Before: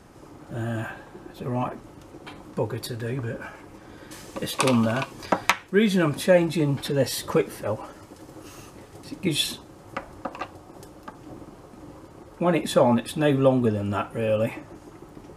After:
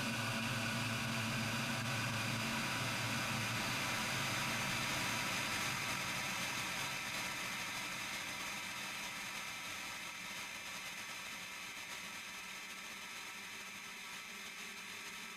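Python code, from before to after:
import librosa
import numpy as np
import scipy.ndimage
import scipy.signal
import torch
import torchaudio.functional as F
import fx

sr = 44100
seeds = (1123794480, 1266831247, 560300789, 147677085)

y = fx.peak_eq(x, sr, hz=730.0, db=-7.0, octaves=1.9)
y = fx.paulstretch(y, sr, seeds[0], factor=33.0, window_s=1.0, from_s=5.06)
y = fx.tone_stack(y, sr, knobs='5-5-5')
y = fx.dmg_crackle(y, sr, seeds[1], per_s=230.0, level_db=-61.0)
y = fx.over_compress(y, sr, threshold_db=-44.0, ratio=-0.5)
y = y * librosa.db_to_amplitude(3.0)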